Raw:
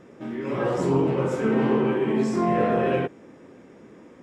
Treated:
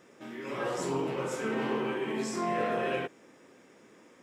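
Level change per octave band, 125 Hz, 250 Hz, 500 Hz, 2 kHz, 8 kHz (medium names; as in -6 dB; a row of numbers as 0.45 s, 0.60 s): -14.0 dB, -11.5 dB, -9.0 dB, -3.0 dB, no reading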